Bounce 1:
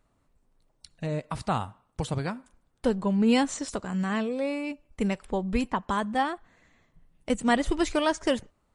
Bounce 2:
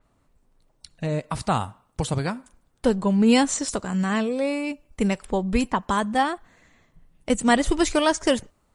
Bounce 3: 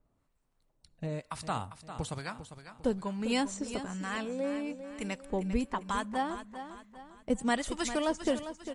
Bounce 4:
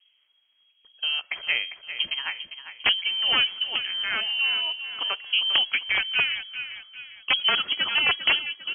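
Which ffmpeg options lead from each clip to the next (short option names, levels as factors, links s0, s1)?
-af "adynamicequalizer=threshold=0.00447:dfrequency=4900:dqfactor=0.7:tfrequency=4900:tqfactor=0.7:attack=5:release=100:ratio=0.375:range=3:mode=boostabove:tftype=highshelf,volume=1.68"
-filter_complex "[0:a]acrossover=split=810[s0][s1];[s0]aeval=exprs='val(0)*(1-0.7/2+0.7/2*cos(2*PI*1.1*n/s))':c=same[s2];[s1]aeval=exprs='val(0)*(1-0.7/2-0.7/2*cos(2*PI*1.1*n/s))':c=same[s3];[s2][s3]amix=inputs=2:normalize=0,asplit=2[s4][s5];[s5]aecho=0:1:400|800|1200|1600:0.282|0.118|0.0497|0.0209[s6];[s4][s6]amix=inputs=2:normalize=0,volume=0.447"
-af "aeval=exprs='(mod(10.6*val(0)+1,2)-1)/10.6':c=same,lowpass=f=2800:t=q:w=0.5098,lowpass=f=2800:t=q:w=0.6013,lowpass=f=2800:t=q:w=0.9,lowpass=f=2800:t=q:w=2.563,afreqshift=-3300,volume=2.66"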